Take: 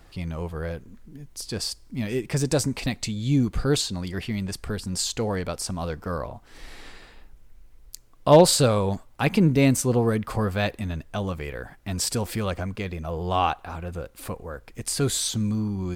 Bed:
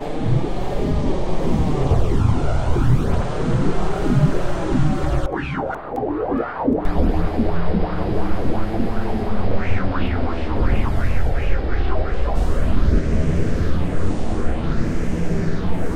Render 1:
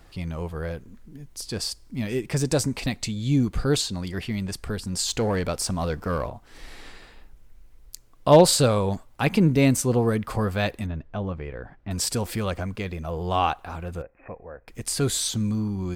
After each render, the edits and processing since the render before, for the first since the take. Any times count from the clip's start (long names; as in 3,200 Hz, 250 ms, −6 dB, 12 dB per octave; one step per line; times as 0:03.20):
0:05.08–0:06.30: leveller curve on the samples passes 1
0:10.86–0:11.91: head-to-tape spacing loss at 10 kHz 31 dB
0:14.02–0:14.68: Chebyshev low-pass with heavy ripple 2,600 Hz, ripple 9 dB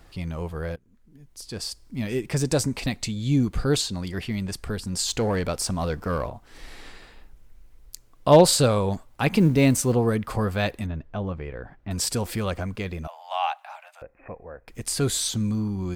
0:00.76–0:02.06: fade in, from −21 dB
0:09.33–0:09.94: mu-law and A-law mismatch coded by mu
0:13.07–0:14.02: Chebyshev high-pass with heavy ripple 590 Hz, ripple 6 dB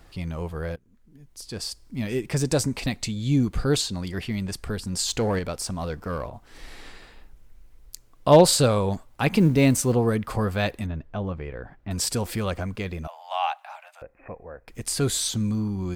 0:05.39–0:06.33: clip gain −3.5 dB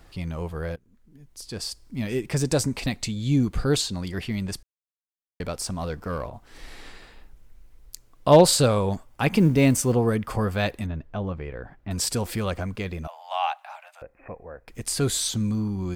0:04.63–0:05.40: silence
0:08.66–0:10.54: notch filter 4,000 Hz, Q 13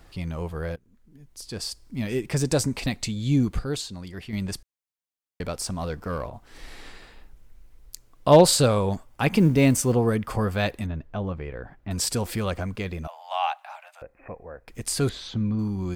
0:03.59–0:04.33: clip gain −7 dB
0:15.09–0:15.59: high-frequency loss of the air 280 metres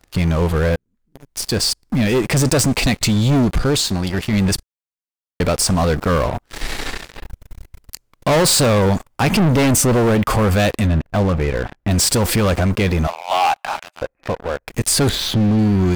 leveller curve on the samples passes 5
brickwall limiter −11.5 dBFS, peak gain reduction 5.5 dB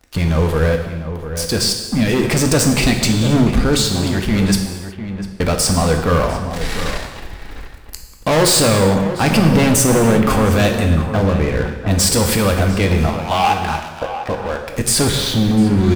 slap from a distant wall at 120 metres, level −10 dB
reverb whose tail is shaped and stops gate 390 ms falling, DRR 3.5 dB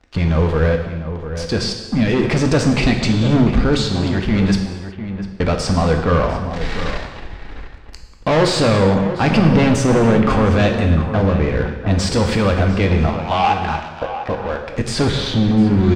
high-frequency loss of the air 140 metres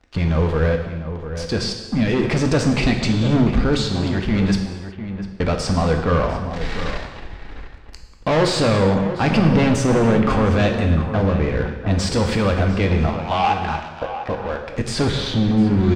level −2.5 dB